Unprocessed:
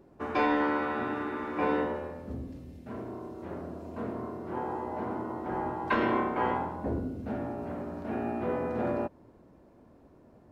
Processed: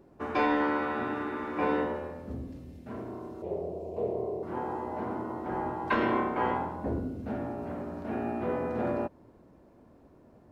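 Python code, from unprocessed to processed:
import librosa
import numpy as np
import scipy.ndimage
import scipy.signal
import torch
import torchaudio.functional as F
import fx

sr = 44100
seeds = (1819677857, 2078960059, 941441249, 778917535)

y = fx.curve_eq(x, sr, hz=(180.0, 260.0, 410.0, 760.0, 1500.0, 2400.0), db=(0, -12, 11, 3, -22, -5), at=(3.42, 4.43))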